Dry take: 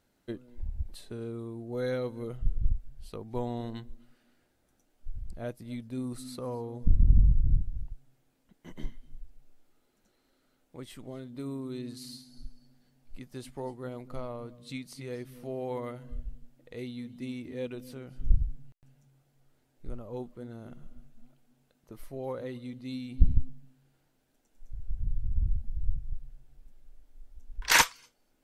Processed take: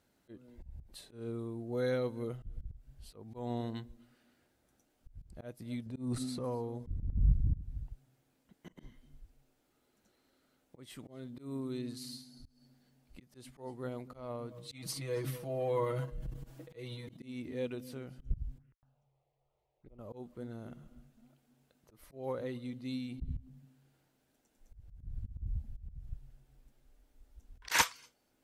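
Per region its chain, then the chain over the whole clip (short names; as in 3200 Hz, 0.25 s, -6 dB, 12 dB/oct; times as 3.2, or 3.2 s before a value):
5.86–6.44 LPF 10000 Hz + low shelf 370 Hz +6 dB + transient shaper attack -9 dB, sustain +8 dB
14.51–17.17 transient shaper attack -2 dB, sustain +12 dB + bell 1100 Hz +5 dB 0.29 oct + comb 6.2 ms, depth 82%
18.58–19.99 LPF 2100 Hz + bell 160 Hz -9.5 dB 1.9 oct + envelope phaser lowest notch 240 Hz, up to 1500 Hz, full sweep at -38.5 dBFS
whole clip: HPF 42 Hz 12 dB/oct; auto swell 0.182 s; gain -1 dB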